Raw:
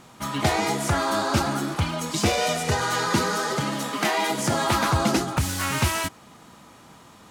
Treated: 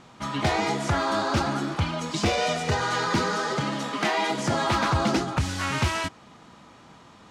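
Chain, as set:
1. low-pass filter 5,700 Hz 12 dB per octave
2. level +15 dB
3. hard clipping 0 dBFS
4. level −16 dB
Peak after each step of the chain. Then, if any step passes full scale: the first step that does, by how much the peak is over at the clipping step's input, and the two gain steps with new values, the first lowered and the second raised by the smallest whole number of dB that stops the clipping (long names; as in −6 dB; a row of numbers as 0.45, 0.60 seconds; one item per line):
−9.0, +6.0, 0.0, −16.0 dBFS
step 2, 6.0 dB
step 2 +9 dB, step 4 −10 dB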